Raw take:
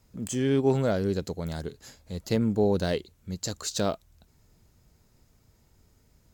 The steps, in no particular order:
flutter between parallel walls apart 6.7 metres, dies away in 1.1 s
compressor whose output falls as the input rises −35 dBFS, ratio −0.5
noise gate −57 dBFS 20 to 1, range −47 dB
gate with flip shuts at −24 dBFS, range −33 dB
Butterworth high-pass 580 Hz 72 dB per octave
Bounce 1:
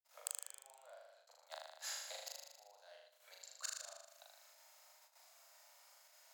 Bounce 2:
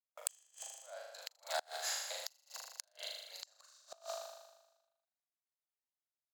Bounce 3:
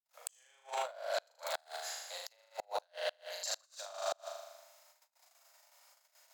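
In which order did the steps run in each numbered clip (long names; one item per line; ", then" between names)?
gate with flip, then compressor whose output falls as the input rises, then flutter between parallel walls, then noise gate, then Butterworth high-pass
compressor whose output falls as the input rises, then Butterworth high-pass, then noise gate, then flutter between parallel walls, then gate with flip
flutter between parallel walls, then noise gate, then Butterworth high-pass, then compressor whose output falls as the input rises, then gate with flip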